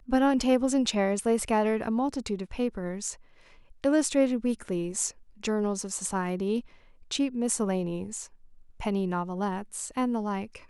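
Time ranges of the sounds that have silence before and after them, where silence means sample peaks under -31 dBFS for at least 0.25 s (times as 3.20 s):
3.84–5.09 s
5.44–6.60 s
7.11–8.22 s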